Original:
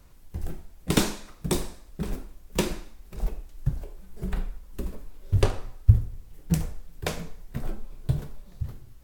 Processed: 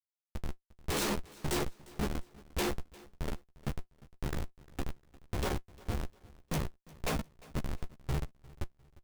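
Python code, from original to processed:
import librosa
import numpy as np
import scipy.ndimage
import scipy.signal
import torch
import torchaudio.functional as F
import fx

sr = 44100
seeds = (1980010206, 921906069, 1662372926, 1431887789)

p1 = fx.bass_treble(x, sr, bass_db=-10, treble_db=2)
p2 = fx.schmitt(p1, sr, flips_db=-33.5)
p3 = fx.quant_float(p2, sr, bits=2)
p4 = fx.doubler(p3, sr, ms=14.0, db=-5.0)
p5 = p4 + fx.echo_feedback(p4, sr, ms=352, feedback_pct=36, wet_db=-22, dry=0)
y = p5 * librosa.db_to_amplitude(3.0)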